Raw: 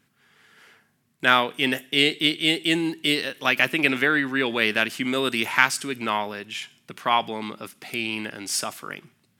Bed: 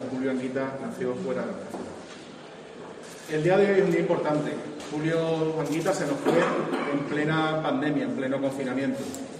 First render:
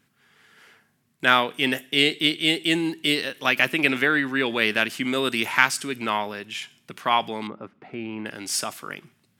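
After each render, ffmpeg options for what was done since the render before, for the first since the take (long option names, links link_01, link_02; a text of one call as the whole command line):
ffmpeg -i in.wav -filter_complex "[0:a]asettb=1/sr,asplit=3[link_01][link_02][link_03];[link_01]atrim=end=7.474[link_04];[link_02]atrim=start=7.47:end=8.26,asetpts=PTS-STARTPTS,afade=type=in:duration=0.004:curve=qsin,afade=type=out:start_time=0.786:duration=0.004:curve=qsin,lowpass=1200[link_05];[link_03]atrim=start=8.256[link_06];[link_04][link_05]acrossfade=duration=0.004:curve1=hsin:curve2=qsin[link_07];[link_07][link_06]acrossfade=duration=0.004:curve1=qsin:curve2=hsin" out.wav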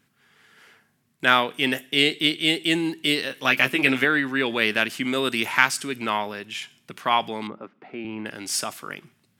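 ffmpeg -i in.wav -filter_complex "[0:a]asettb=1/sr,asplit=3[link_01][link_02][link_03];[link_01]atrim=end=3.294[link_04];[link_02]atrim=start=3.29:end=4.05,asetpts=PTS-STARTPTS,afade=type=in:duration=0.004:curve=qsin,afade=type=out:start_time=0.756:duration=0.004:curve=qsin,asplit=2[link_05][link_06];[link_06]adelay=15,volume=-6dB[link_07];[link_05][link_07]amix=inputs=2:normalize=0,atrim=end_sample=33516[link_08];[link_03]atrim=start=4.046[link_09];[link_04][link_08]acrossfade=duration=0.004:curve1=hsin:curve2=qsin[link_10];[link_10][link_09]acrossfade=duration=0.004:curve1=qsin:curve2=hsin,asettb=1/sr,asplit=3[link_11][link_12][link_13];[link_11]atrim=end=7.584[link_14];[link_12]atrim=start=7.58:end=8.05,asetpts=PTS-STARTPTS,afade=type=in:duration=0.004:curve=qsin,afade=type=out:start_time=0.466:duration=0.004:curve=qsin,highpass=200,lowpass=5300[link_15];[link_13]atrim=start=8.046[link_16];[link_14][link_15]acrossfade=duration=0.004:curve1=hsin:curve2=qsin[link_17];[link_17][link_16]acrossfade=duration=0.004:curve1=qsin:curve2=hsin" out.wav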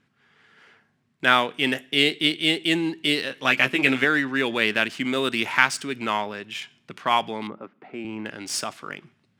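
ffmpeg -i in.wav -af "adynamicsmooth=sensitivity=6:basefreq=5100" out.wav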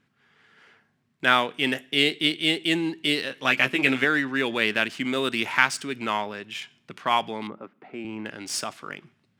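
ffmpeg -i in.wav -af "volume=-1.5dB" out.wav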